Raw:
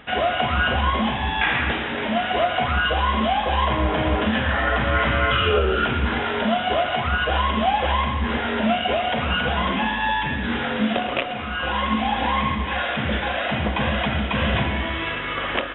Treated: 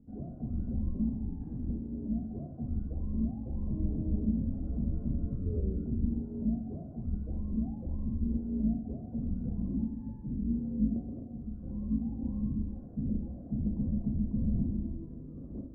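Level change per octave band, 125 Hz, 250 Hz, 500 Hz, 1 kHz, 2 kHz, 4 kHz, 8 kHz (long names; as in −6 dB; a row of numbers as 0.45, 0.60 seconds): −7.5 dB, −6.0 dB, −24.5 dB, below −40 dB, below −40 dB, below −40 dB, can't be measured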